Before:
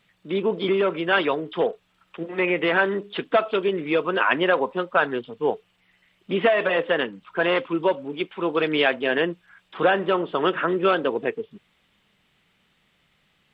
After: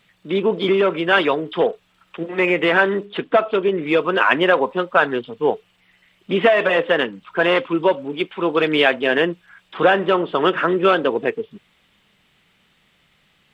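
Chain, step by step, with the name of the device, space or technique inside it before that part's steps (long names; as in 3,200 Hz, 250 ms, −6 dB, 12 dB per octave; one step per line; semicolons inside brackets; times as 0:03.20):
0:03.04–0:03.81: high-shelf EQ 3,600 Hz → 2,800 Hz −10 dB
exciter from parts (in parallel at −13 dB: high-pass filter 2,100 Hz 6 dB per octave + soft clipping −33 dBFS, distortion −5 dB)
on the sum: level +4.5 dB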